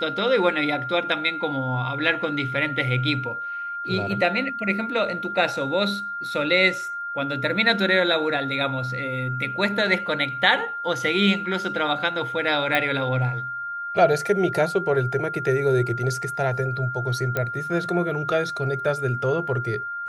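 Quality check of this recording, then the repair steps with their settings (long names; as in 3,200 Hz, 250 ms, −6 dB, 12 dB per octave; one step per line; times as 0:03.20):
whistle 1,400 Hz −28 dBFS
0:12.75: click −9 dBFS
0:17.37: click −11 dBFS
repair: click removal
notch filter 1,400 Hz, Q 30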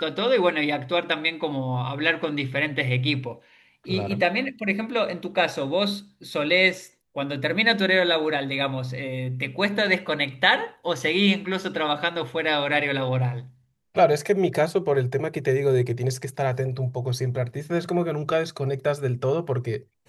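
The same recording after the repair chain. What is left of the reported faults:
none of them is left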